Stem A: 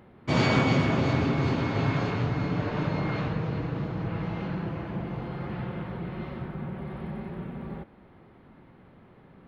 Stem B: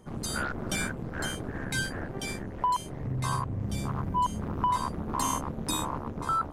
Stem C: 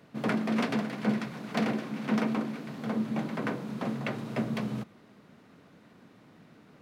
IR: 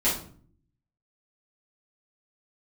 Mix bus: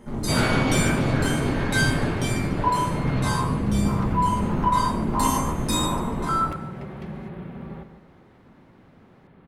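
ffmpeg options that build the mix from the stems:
-filter_complex "[0:a]volume=0dB,asplit=2[link_01][link_02];[link_02]volume=-10.5dB[link_03];[1:a]volume=-2.5dB,asplit=3[link_04][link_05][link_06];[link_05]volume=-4.5dB[link_07];[link_06]volume=-3.5dB[link_08];[2:a]acompressor=threshold=-59dB:ratio=1.5,adelay=2450,volume=-2.5dB[link_09];[3:a]atrim=start_sample=2205[link_10];[link_07][link_10]afir=irnorm=-1:irlink=0[link_11];[link_03][link_08]amix=inputs=2:normalize=0,aecho=0:1:146|292|438|584|730:1|0.33|0.109|0.0359|0.0119[link_12];[link_01][link_04][link_09][link_11][link_12]amix=inputs=5:normalize=0"

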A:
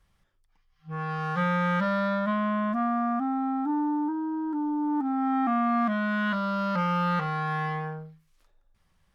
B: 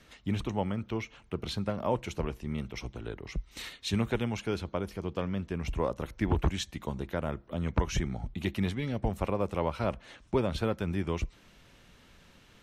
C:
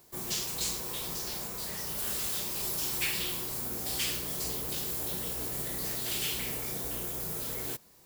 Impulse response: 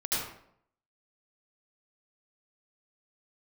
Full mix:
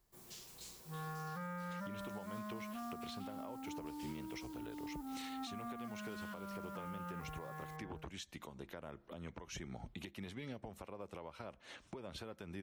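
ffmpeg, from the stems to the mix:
-filter_complex "[0:a]lowpass=2100,volume=-12dB[link_01];[1:a]highpass=frequency=100:poles=1,bass=frequency=250:gain=-4,treble=frequency=4000:gain=2,acompressor=threshold=-37dB:ratio=6,adelay=1600,volume=1dB[link_02];[2:a]highshelf=frequency=12000:gain=-3,volume=-19.5dB[link_03];[link_01][link_02][link_03]amix=inputs=3:normalize=0,alimiter=level_in=12dB:limit=-24dB:level=0:latency=1:release=477,volume=-12dB"

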